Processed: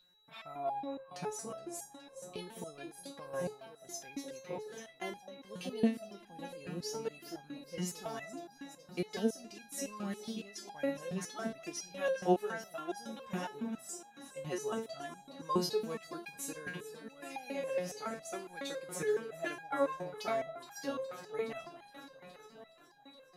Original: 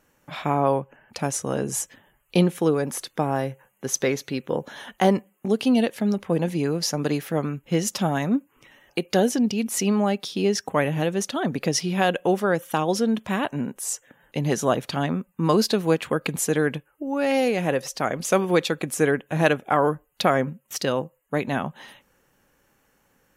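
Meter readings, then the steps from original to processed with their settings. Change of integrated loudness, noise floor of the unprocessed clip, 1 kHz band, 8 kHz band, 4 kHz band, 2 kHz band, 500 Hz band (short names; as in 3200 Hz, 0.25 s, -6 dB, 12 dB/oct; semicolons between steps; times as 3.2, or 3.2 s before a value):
-15.5 dB, -66 dBFS, -15.0 dB, -15.5 dB, -15.0 dB, -15.5 dB, -14.0 dB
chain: whine 3900 Hz -44 dBFS; echo with dull and thin repeats by turns 0.209 s, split 920 Hz, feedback 85%, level -11.5 dB; stepped resonator 7.2 Hz 180–820 Hz; gain -1 dB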